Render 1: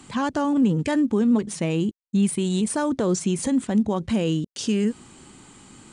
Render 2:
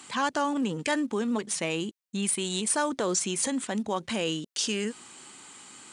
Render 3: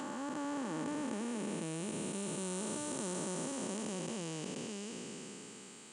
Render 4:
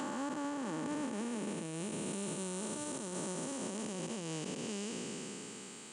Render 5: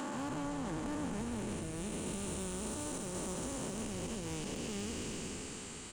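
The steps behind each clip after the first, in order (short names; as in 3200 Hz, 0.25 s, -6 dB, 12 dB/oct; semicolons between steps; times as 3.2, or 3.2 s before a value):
HPF 1100 Hz 6 dB/oct; gain +3.5 dB
time blur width 1.38 s; dynamic EQ 3300 Hz, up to -6 dB, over -55 dBFS, Q 1.1; gain -2.5 dB
limiter -33.5 dBFS, peak gain reduction 10.5 dB; gain +3.5 dB
soft clip -36 dBFS, distortion -15 dB; on a send: frequency-shifting echo 0.139 s, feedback 59%, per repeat -120 Hz, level -7 dB; on the sum: gain +1.5 dB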